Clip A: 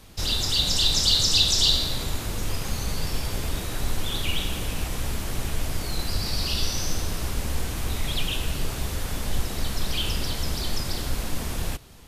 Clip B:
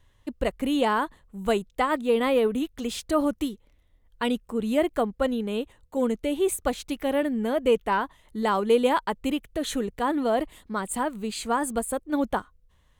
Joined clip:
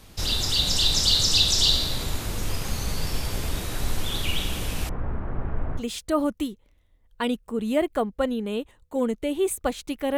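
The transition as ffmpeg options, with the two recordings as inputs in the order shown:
-filter_complex "[0:a]asettb=1/sr,asplit=3[a][b][c];[a]atrim=end=4.894[d];[b]atrim=start=4.89:end=5.83,asetpts=PTS-STARTPTS,afade=t=in:d=0.004:c=qsin,afade=t=out:st=0.936:d=0.004:c=qsin,lowpass=f=1.5k:w=0.5412,lowpass=f=1.5k:w=1.3066[e];[c]atrim=start=5.826[f];[d][e]acrossfade=d=0.004:c1=hsin:c2=qsin[g];[g][f]acrossfade=d=0.004:c1=qsin:c2=hsin,apad=whole_dur=10.17,atrim=end=10.17,atrim=end=5.83,asetpts=PTS-STARTPTS[h];[1:a]atrim=start=2.76:end=7.18,asetpts=PTS-STARTPTS[i];[h][i]acrossfade=d=0.08:c1=tri:c2=tri"

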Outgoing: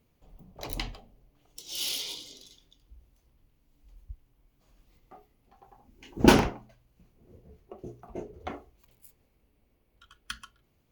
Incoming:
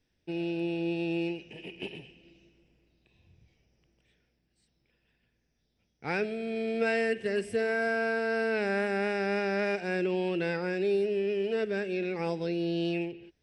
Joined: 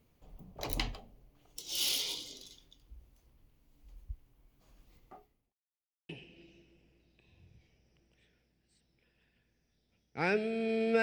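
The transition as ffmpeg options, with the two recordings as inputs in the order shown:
-filter_complex "[0:a]apad=whole_dur=11.02,atrim=end=11.02,asplit=2[a][b];[a]atrim=end=5.53,asetpts=PTS-STARTPTS,afade=t=out:st=5.02:d=0.51[c];[b]atrim=start=5.53:end=6.09,asetpts=PTS-STARTPTS,volume=0[d];[1:a]atrim=start=1.96:end=6.89,asetpts=PTS-STARTPTS,afade=t=in:d=0.004:c=hsin[e];[c][d][e]concat=n=3:v=0:a=1"

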